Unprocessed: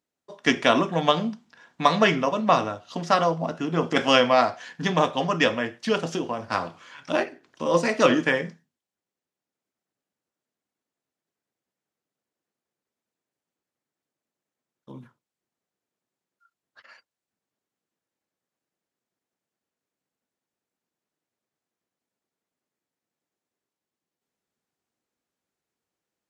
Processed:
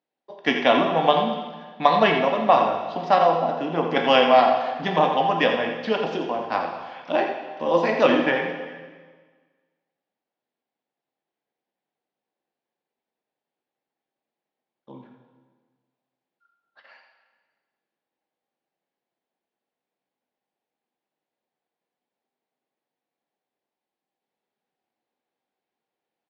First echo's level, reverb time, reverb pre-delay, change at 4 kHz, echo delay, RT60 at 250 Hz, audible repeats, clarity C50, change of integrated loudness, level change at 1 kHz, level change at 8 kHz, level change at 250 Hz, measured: -8.0 dB, 1.5 s, 7 ms, 0.0 dB, 85 ms, 1.6 s, 1, 4.0 dB, +2.0 dB, +4.5 dB, under -10 dB, -0.5 dB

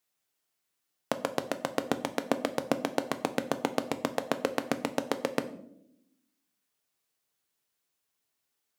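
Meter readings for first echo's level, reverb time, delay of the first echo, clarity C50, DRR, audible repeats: none, 0.80 s, none, 14.5 dB, 8.5 dB, none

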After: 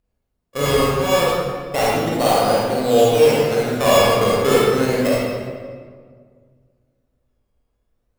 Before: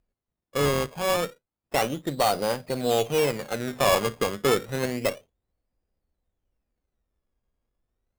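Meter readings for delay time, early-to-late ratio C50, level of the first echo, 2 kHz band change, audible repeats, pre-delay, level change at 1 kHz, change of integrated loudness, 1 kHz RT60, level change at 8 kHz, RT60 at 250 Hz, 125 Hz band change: none, -4.0 dB, none, +7.0 dB, none, 33 ms, +8.0 dB, +8.5 dB, 1.7 s, +6.0 dB, 2.2 s, +8.5 dB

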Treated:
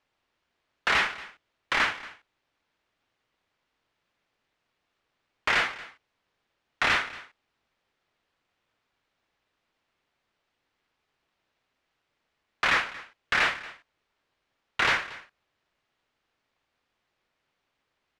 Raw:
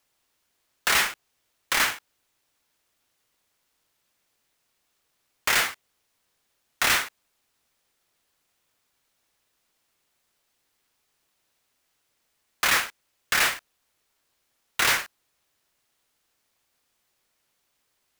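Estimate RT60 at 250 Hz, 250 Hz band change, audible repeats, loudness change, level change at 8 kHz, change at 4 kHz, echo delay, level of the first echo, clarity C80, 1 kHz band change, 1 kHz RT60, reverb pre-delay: none, 0.0 dB, 1, -2.5 dB, -15.5 dB, -4.5 dB, 0.231 s, -18.5 dB, none, 0.0 dB, none, none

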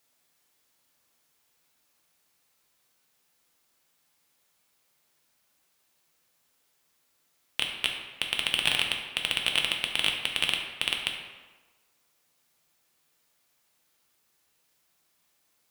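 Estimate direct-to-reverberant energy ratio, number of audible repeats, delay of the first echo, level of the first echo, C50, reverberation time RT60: 1.0 dB, none, none, none, 4.5 dB, 1.3 s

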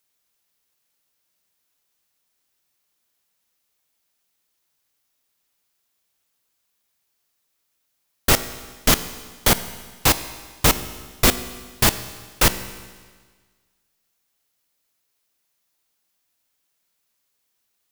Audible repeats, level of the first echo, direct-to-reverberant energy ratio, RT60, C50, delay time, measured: none, none, 12.0 dB, 1.5 s, 13.5 dB, none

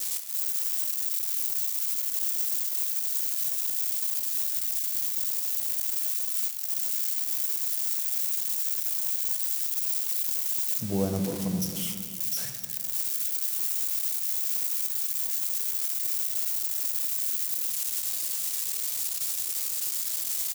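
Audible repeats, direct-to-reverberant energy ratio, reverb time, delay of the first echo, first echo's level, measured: 1, 4.0 dB, 1.9 s, 0.269 s, -16.5 dB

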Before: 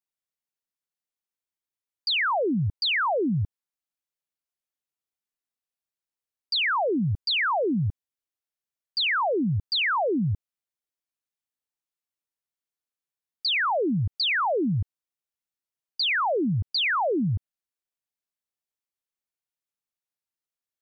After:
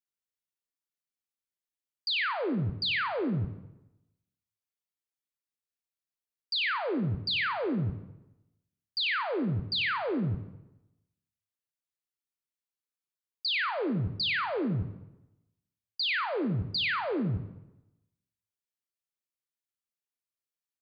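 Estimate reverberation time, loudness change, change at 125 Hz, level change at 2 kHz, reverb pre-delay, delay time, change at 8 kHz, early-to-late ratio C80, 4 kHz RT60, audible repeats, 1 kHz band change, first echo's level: 0.95 s, -5.5 dB, -4.5 dB, -5.0 dB, 21 ms, 93 ms, n/a, 10.5 dB, 0.75 s, 1, -8.0 dB, -14.0 dB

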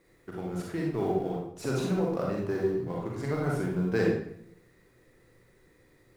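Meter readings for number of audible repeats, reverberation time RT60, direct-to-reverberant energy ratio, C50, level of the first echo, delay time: none, 0.70 s, -2.5 dB, 0.0 dB, none, none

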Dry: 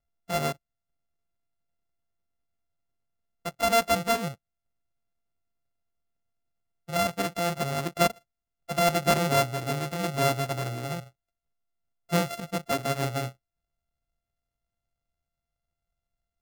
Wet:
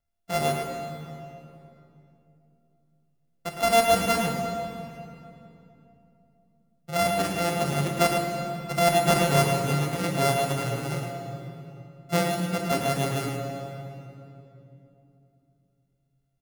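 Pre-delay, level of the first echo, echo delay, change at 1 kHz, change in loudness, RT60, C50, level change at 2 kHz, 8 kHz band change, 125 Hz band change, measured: 11 ms, -7.0 dB, 0.11 s, +3.0 dB, +2.0 dB, 3.0 s, 1.5 dB, +2.0 dB, +3.0 dB, +4.0 dB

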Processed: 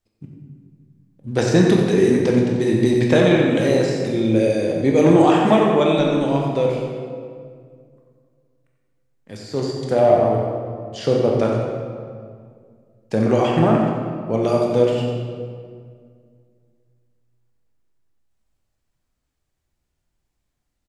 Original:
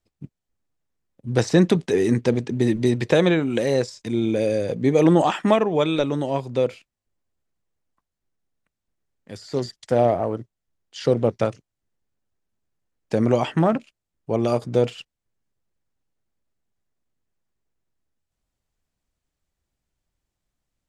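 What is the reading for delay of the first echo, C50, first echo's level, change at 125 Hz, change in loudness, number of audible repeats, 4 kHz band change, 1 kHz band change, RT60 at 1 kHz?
90 ms, 0.5 dB, -8.0 dB, +3.5 dB, +3.5 dB, 1, +3.0 dB, +4.5 dB, 1.9 s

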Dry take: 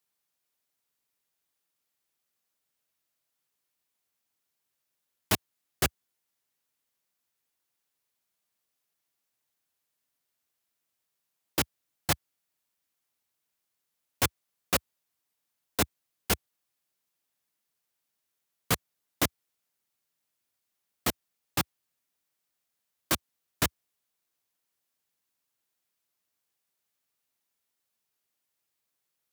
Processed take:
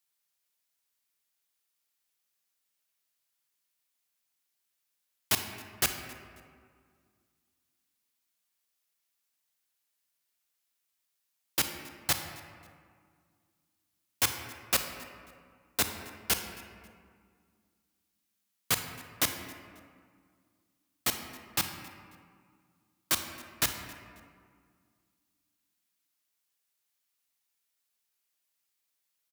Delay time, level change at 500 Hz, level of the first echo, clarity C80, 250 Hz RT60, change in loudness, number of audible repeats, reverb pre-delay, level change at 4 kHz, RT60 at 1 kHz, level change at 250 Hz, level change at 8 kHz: 0.27 s, -5.5 dB, -22.0 dB, 8.0 dB, 2.5 s, -0.5 dB, 1, 32 ms, +1.5 dB, 2.0 s, -6.5 dB, +1.5 dB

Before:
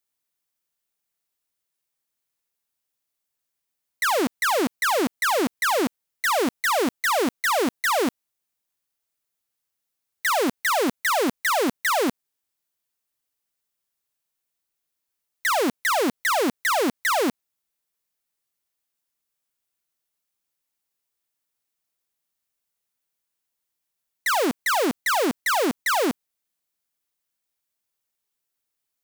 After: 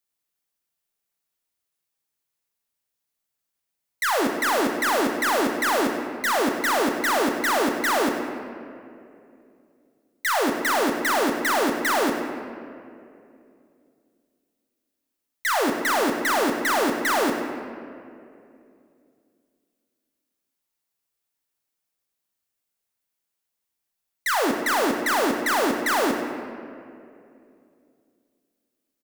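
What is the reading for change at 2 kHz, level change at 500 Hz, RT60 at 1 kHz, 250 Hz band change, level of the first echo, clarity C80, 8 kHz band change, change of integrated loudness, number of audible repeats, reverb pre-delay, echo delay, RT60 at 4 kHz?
+0.5 dB, +0.5 dB, 2.2 s, +1.0 dB, -12.0 dB, 5.5 dB, -0.5 dB, 0.0 dB, 1, 4 ms, 0.1 s, 1.4 s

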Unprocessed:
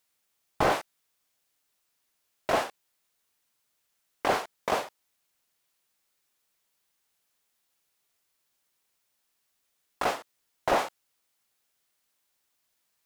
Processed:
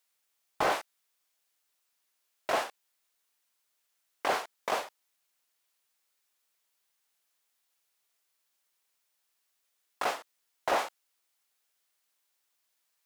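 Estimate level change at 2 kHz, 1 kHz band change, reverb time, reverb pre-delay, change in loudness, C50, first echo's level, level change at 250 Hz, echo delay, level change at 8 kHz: -2.0 dB, -3.0 dB, none, none, -3.0 dB, none, none, -7.5 dB, none, -1.5 dB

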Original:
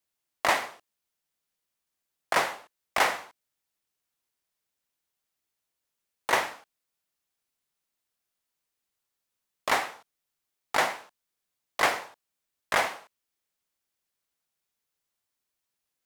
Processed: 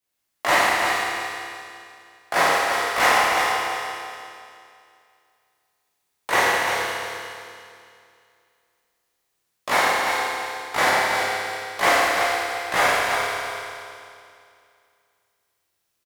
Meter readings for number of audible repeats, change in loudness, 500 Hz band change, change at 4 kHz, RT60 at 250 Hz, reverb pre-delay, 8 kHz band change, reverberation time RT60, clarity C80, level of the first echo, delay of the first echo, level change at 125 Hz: 1, +7.0 dB, +9.5 dB, +9.5 dB, 2.6 s, 13 ms, +9.5 dB, 2.5 s, -3.0 dB, -5.5 dB, 0.346 s, +10.5 dB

